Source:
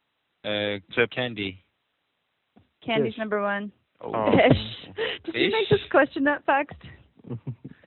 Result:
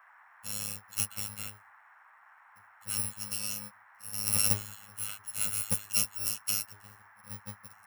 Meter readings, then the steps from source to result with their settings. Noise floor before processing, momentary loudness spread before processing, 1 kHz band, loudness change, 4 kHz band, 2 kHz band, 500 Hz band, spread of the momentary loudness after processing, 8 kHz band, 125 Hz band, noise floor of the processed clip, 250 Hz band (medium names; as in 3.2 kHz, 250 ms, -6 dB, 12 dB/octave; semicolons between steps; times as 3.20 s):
-76 dBFS, 17 LU, -21.0 dB, -6.5 dB, -7.0 dB, -17.5 dB, -29.5 dB, 17 LU, no reading, -11.5 dB, -59 dBFS, -21.0 dB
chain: bit-reversed sample order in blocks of 128 samples; robot voice 103 Hz; band noise 790–1900 Hz -51 dBFS; trim -7.5 dB